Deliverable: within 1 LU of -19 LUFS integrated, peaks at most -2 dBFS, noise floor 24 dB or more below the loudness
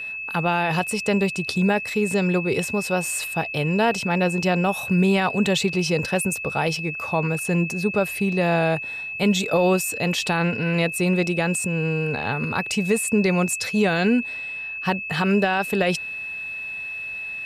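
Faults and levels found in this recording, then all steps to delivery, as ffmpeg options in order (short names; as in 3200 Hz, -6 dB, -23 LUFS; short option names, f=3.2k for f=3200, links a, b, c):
steady tone 2600 Hz; tone level -29 dBFS; loudness -22.5 LUFS; peak -9.5 dBFS; loudness target -19.0 LUFS
-> -af "bandreject=f=2.6k:w=30"
-af "volume=3.5dB"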